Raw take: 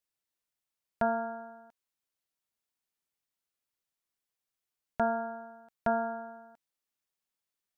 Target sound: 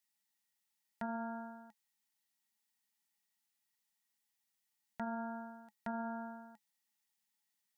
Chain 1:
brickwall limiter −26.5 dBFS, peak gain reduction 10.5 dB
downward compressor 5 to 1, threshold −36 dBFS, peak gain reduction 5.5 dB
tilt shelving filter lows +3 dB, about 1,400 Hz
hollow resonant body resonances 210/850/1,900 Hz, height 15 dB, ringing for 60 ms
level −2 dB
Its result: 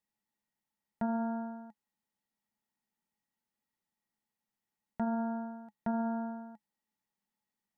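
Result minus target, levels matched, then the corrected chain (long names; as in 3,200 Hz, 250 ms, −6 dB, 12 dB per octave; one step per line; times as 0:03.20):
1,000 Hz band −3.0 dB
brickwall limiter −26.5 dBFS, peak gain reduction 10.5 dB
downward compressor 5 to 1, threshold −36 dBFS, peak gain reduction 5.5 dB
tilt shelving filter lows −7 dB, about 1,400 Hz
hollow resonant body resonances 210/850/1,900 Hz, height 15 dB, ringing for 60 ms
level −2 dB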